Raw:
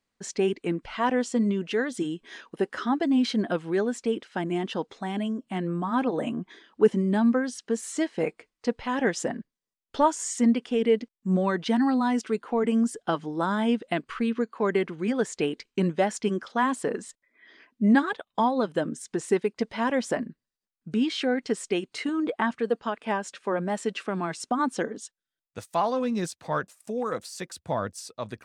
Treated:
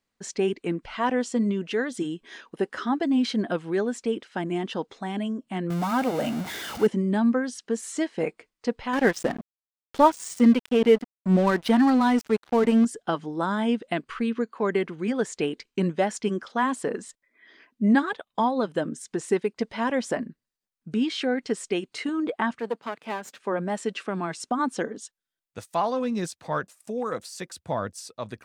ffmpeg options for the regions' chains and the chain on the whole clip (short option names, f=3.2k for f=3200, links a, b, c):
-filter_complex "[0:a]asettb=1/sr,asplit=3[a][b][c];[a]atrim=end=5.704[d];[b]atrim=start=5.7:end=6.87,asetpts=PTS-STARTPTS,afade=t=in:d=0.004:c=qsin,afade=t=out:st=1.166:d=0.004:c=qsin,aeval=exprs='val(0)+0.5*0.0316*sgn(val(0))':c=same,highpass=81,aecho=1:1:1.4:0.4,atrim=end_sample=51597[e];[c]atrim=start=6.866[f];[d][e]acrossfade=d=0.004:c1=hsin:c2=qsin[g];[g][f]acrossfade=d=0.004:c1=qsin:c2=hsin,asettb=1/sr,asplit=3[h][i][j];[h]atrim=end=8.934[k];[i]atrim=start=8.93:end=12.85,asetpts=PTS-STARTPTS,afade=t=in:d=0.004:c=qsin,afade=t=out:st=3.916:d=0.004:c=qsin,equalizer=f=7k:w=3.5:g=-6,acontrast=28,aeval=exprs='sgn(val(0))*max(abs(val(0))-0.0211,0)':c=same[l];[j]atrim=start=12.846[m];[k][l]acrossfade=d=0.004:c1=hsin:c2=qsin[n];[n][m]acrossfade=d=0.004:c1=qsin:c2=hsin,asettb=1/sr,asplit=3[o][p][q];[o]atrim=end=22.594[r];[p]atrim=start=22.59:end=23.4,asetpts=PTS-STARTPTS,afade=t=in:d=0.004:c=qsin,afade=t=out:st=0.806:d=0.004:c=qsin,aeval=exprs='if(lt(val(0),0),0.251*val(0),val(0))':c=same,highpass=f=140:w=0.5412,highpass=f=140:w=1.3066,bandreject=f=5.5k:w=27[s];[q]atrim=start=23.396[t];[r][s]acrossfade=d=0.004:c1=hsin:c2=qsin[u];[u][t]acrossfade=d=0.004:c1=qsin:c2=hsin"